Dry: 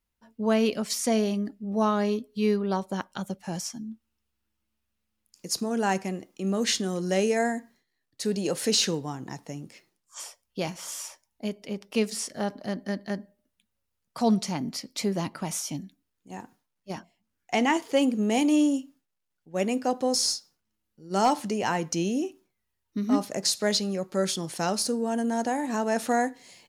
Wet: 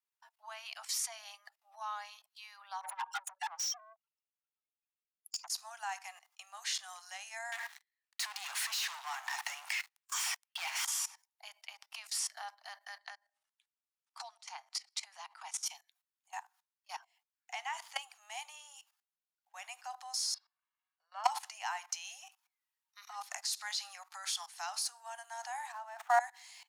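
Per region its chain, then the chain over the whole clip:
2.81–5.48 s: spectral contrast enhancement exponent 2.5 + compression 10:1, threshold -42 dBFS + overdrive pedal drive 36 dB, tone 7.4 kHz, clips at -24.5 dBFS
7.52–10.85 s: peaking EQ 2.2 kHz +10.5 dB 1.4 oct + compression 4:1, threshold -32 dBFS + waveshaping leveller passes 5
12.99–15.66 s: low-pass 10 kHz 24 dB/octave + peaking EQ 100 Hz +11 dB 1.5 oct + compression 20:1, threshold -33 dBFS
20.34–21.24 s: high-pass 250 Hz + distance through air 440 m + comb 1.8 ms, depth 62%
21.92–24.54 s: high-pass 260 Hz + band-stop 630 Hz, Q 10
25.72–26.20 s: median filter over 9 samples + tilt shelf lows +6.5 dB, about 1.3 kHz
whole clip: level held to a coarse grid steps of 19 dB; steep high-pass 750 Hz 72 dB/octave; trim +3 dB

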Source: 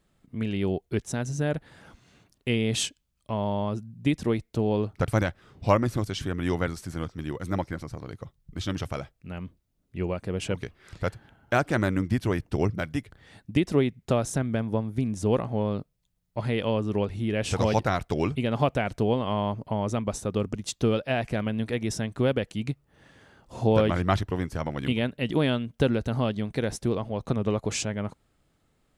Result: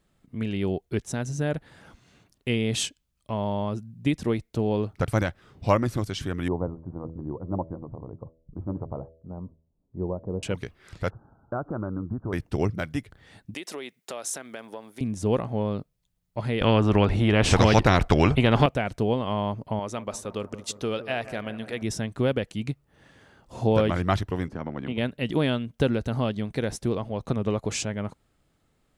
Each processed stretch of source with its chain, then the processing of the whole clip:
6.48–10.43 s: elliptic low-pass 1 kHz, stop band 80 dB + de-hum 81.19 Hz, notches 8
11.10–12.33 s: steep low-pass 1.4 kHz 72 dB/octave + compression 2.5:1, threshold -28 dBFS
13.54–15.01 s: high-pass 400 Hz + compression 3:1, threshold -32 dBFS + tilt EQ +2 dB/octave
16.61–18.66 s: tilt EQ -4 dB/octave + spectrum-flattening compressor 2:1
19.79–21.82 s: bass shelf 300 Hz -11.5 dB + bucket-brigade echo 169 ms, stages 2048, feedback 60%, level -14 dB
24.48–24.98 s: band-pass filter 220 Hz, Q 2 + spectrum-flattening compressor 2:1
whole clip: none

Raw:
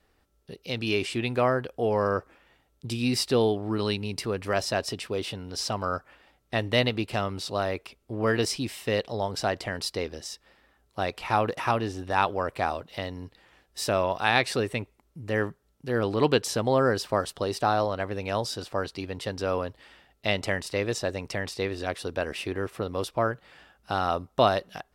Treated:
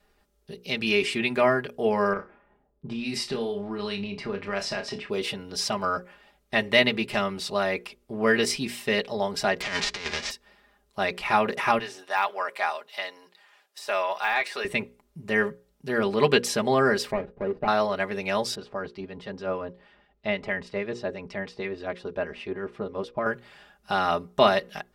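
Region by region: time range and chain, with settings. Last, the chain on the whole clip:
2.13–5.10 s: level-controlled noise filter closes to 730 Hz, open at -20.5 dBFS + compression 4:1, threshold -29 dBFS + flutter echo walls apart 5.2 m, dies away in 0.22 s
9.60–10.30 s: formants flattened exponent 0.3 + low-pass 5.9 kHz 24 dB/octave + compressor with a negative ratio -35 dBFS, ratio -0.5
11.79–14.65 s: high-pass 710 Hz + de-esser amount 95%
17.11–17.68 s: median filter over 41 samples + low-pass 1.5 kHz
18.55–23.26 s: harmonic tremolo 6.3 Hz, depth 50%, crossover 1.4 kHz + tape spacing loss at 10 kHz 24 dB
whole clip: hum notches 60/120/180/240/300/360/420/480/540 Hz; comb 4.9 ms, depth 74%; dynamic bell 2.1 kHz, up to +7 dB, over -45 dBFS, Q 1.9

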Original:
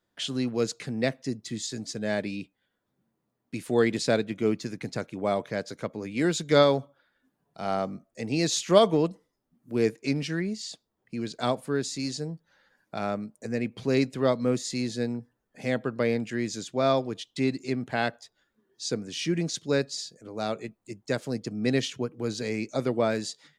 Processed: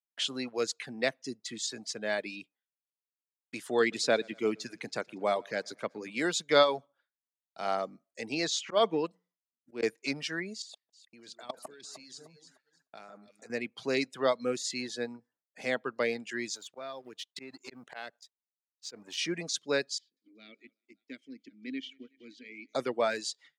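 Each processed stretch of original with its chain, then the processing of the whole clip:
3.80–6.18 s: high-pass 150 Hz 6 dB/octave + bass shelf 260 Hz +6.5 dB + feedback delay 117 ms, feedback 53%, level -17 dB
8.34–9.83 s: slow attack 144 ms + distance through air 69 m + hum notches 60/120/180 Hz
10.62–13.50 s: treble shelf 6.1 kHz +5.5 dB + level held to a coarse grid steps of 23 dB + echo whose repeats swap between lows and highs 152 ms, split 1.8 kHz, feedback 61%, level -5.5 dB
16.55–19.18 s: companding laws mixed up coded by A + slow attack 153 ms + compression 5:1, threshold -35 dBFS
19.98–22.75 s: vowel filter i + thinning echo 185 ms, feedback 59%, high-pass 170 Hz, level -17 dB
whole clip: expander -53 dBFS; reverb removal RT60 0.83 s; frequency weighting A

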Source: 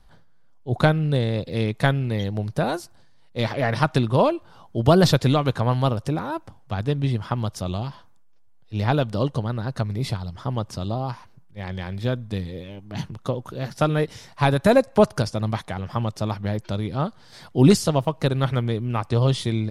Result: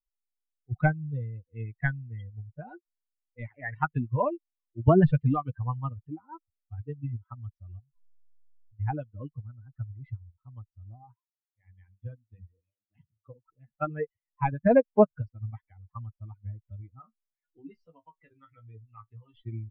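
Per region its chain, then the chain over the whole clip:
7.79–8.80 s: bass shelf 410 Hz +10.5 dB + compression 12:1, threshold -31 dBFS
11.04–13.46 s: high-pass 58 Hz + hum notches 50/100/150/200/250/300 Hz
16.99–19.34 s: compression 5:1, threshold -20 dBFS + bass shelf 320 Hz -6.5 dB + flutter echo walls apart 3.1 m, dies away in 0.22 s
whole clip: expander on every frequency bin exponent 3; steep low-pass 2.1 kHz 36 dB/octave; dynamic bell 150 Hz, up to +3 dB, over -44 dBFS, Q 3.4

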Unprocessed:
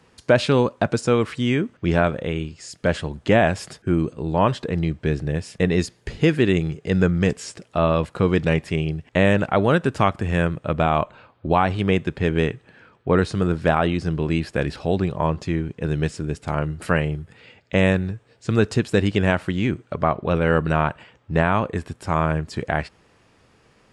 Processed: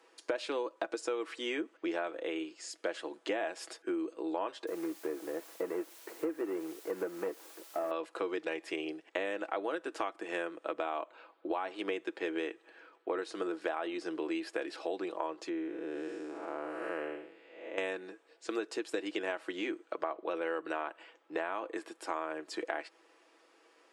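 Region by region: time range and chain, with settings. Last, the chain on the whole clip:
4.67–7.91 s: CVSD coder 16 kbps + low-pass 1.4 kHz + word length cut 8-bit, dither triangular
15.49–17.78 s: spectral blur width 281 ms + treble shelf 3 kHz -10.5 dB
whole clip: elliptic high-pass 310 Hz, stop band 70 dB; comb 6.1 ms, depth 41%; compression 6:1, threshold -26 dBFS; trim -6 dB

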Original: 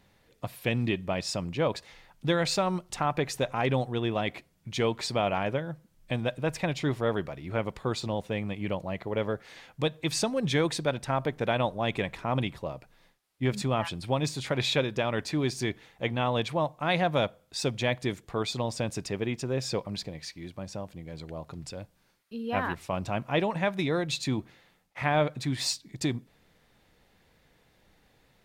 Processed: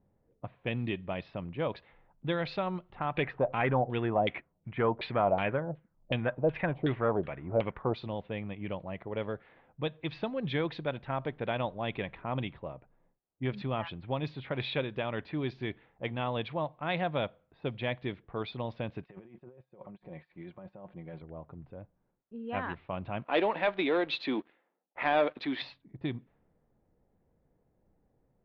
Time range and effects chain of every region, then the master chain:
3.16–7.94 s: waveshaping leveller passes 1 + LFO low-pass saw down 2.7 Hz 510–3500 Hz
19.03–21.22 s: tilt EQ +2.5 dB/octave + comb 5.5 ms, depth 51% + compressor with a negative ratio -43 dBFS
23.24–25.62 s: high-pass 270 Hz 24 dB/octave + waveshaping leveller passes 2
whole clip: steep low-pass 3.7 kHz 36 dB/octave; level-controlled noise filter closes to 610 Hz, open at -23 dBFS; trim -5.5 dB

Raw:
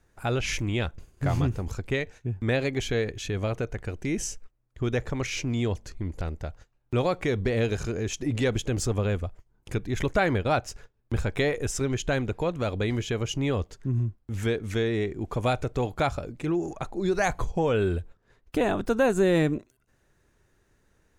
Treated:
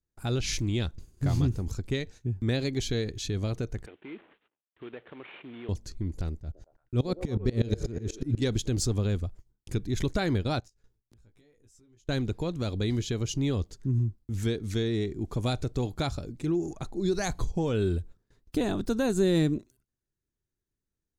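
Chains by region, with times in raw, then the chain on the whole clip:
3.86–5.69 s: CVSD coder 16 kbps + high-pass 470 Hz + compression 1.5:1, threshold -41 dBFS
6.40–8.42 s: bass shelf 400 Hz +7.5 dB + repeats whose band climbs or falls 114 ms, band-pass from 440 Hz, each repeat 0.7 oct, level -4 dB + sawtooth tremolo in dB swelling 8.2 Hz, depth 21 dB
10.60–12.09 s: inverted gate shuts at -31 dBFS, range -25 dB + compression 4:1, threshold -57 dBFS + doubling 18 ms -5 dB
whole clip: dynamic bell 4.1 kHz, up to +6 dB, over -52 dBFS, Q 2.2; gate with hold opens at -51 dBFS; high-order bell 1.2 kHz -8.5 dB 3 oct

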